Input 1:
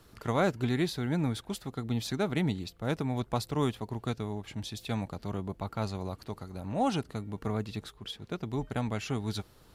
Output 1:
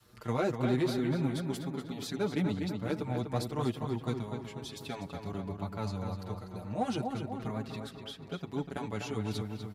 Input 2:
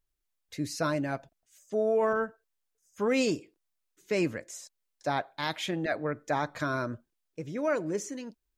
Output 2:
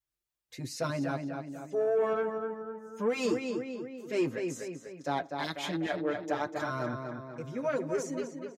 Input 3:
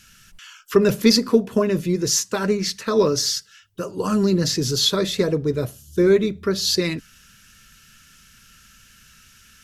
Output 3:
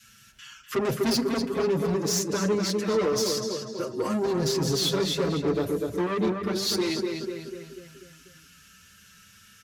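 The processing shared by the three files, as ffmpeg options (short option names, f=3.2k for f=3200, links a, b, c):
-filter_complex "[0:a]adynamicequalizer=threshold=0.0251:dfrequency=350:dqfactor=1:tfrequency=350:tqfactor=1:attack=5:release=100:ratio=0.375:range=2:mode=boostabove:tftype=bell,asplit=2[a][b];[b]adelay=246,lowpass=f=3.7k:p=1,volume=-6dB,asplit=2[c][d];[d]adelay=246,lowpass=f=3.7k:p=1,volume=0.52,asplit=2[e][f];[f]adelay=246,lowpass=f=3.7k:p=1,volume=0.52,asplit=2[g][h];[h]adelay=246,lowpass=f=3.7k:p=1,volume=0.52,asplit=2[i][j];[j]adelay=246,lowpass=f=3.7k:p=1,volume=0.52,asplit=2[k][l];[l]adelay=246,lowpass=f=3.7k:p=1,volume=0.52[m];[a][c][e][g][i][k][m]amix=inputs=7:normalize=0,asoftclip=type=tanh:threshold=-18.5dB,highpass=63,asplit=2[n][o];[o]adelay=6.2,afreqshift=0.3[p];[n][p]amix=inputs=2:normalize=1"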